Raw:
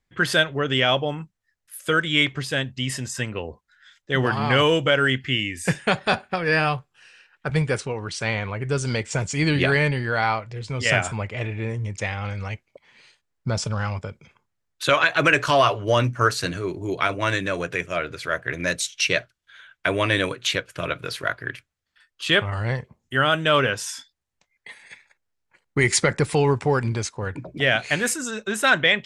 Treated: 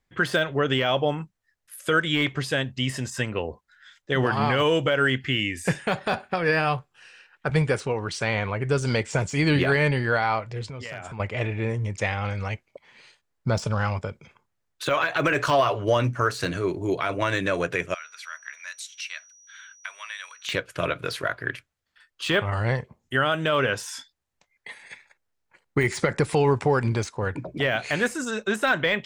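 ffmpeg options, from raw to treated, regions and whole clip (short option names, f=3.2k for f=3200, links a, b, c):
-filter_complex "[0:a]asettb=1/sr,asplit=3[a][b][c];[a]atrim=end=10.664[d];[b]atrim=start=10.66:end=11.2,asetpts=PTS-STARTPTS,afade=t=in:d=0.004:c=qsin,afade=t=out:st=0.536:d=0.004:c=qsin,lowpass=f=3.9k:p=1,asoftclip=type=hard:threshold=-10.5dB,acompressor=threshold=-35dB:ratio=6:attack=3.2:release=140:knee=1:detection=peak[e];[c]atrim=start=11.196[f];[d][e]acrossfade=d=0.004:c1=hsin:c2=qsin[g];[g][f]acrossfade=d=0.004:c1=qsin:c2=hsin,asettb=1/sr,asplit=3[h][i][j];[h]atrim=end=17.944[k];[i]atrim=start=17.94:end=20.49,asetpts=PTS-STARTPTS,afade=t=in:d=0.004:c=qsin,afade=t=out:st=2.546:d=0.004:c=qsin,acompressor=threshold=-42dB:ratio=2:attack=3.2:release=140:knee=1:detection=peak,aeval=exprs='val(0)+0.00282*sin(2*PI*5800*n/s)':c=same,highpass=f=1.1k:w=0.5412,highpass=f=1.1k:w=1.3066[l];[j]atrim=start=20.486[m];[k][l]acrossfade=d=0.004:c1=hsin:c2=qsin[n];[n][m]acrossfade=d=0.004:c1=qsin:c2=hsin,deesser=0.65,equalizer=f=680:w=0.52:g=3,alimiter=limit=-11.5dB:level=0:latency=1:release=110"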